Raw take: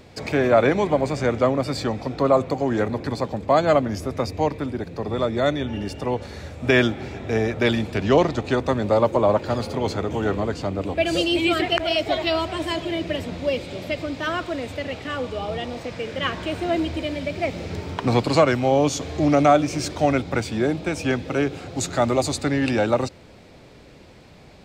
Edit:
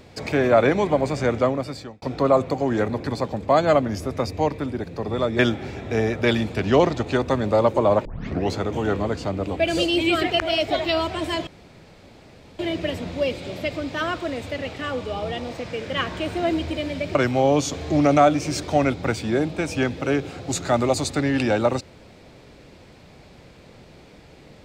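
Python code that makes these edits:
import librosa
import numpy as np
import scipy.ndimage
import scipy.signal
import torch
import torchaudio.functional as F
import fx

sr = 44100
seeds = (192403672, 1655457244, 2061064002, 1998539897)

y = fx.edit(x, sr, fx.fade_out_span(start_s=1.38, length_s=0.64),
    fx.cut(start_s=5.39, length_s=1.38),
    fx.tape_start(start_s=9.43, length_s=0.47),
    fx.insert_room_tone(at_s=12.85, length_s=1.12),
    fx.cut(start_s=17.41, length_s=1.02), tone=tone)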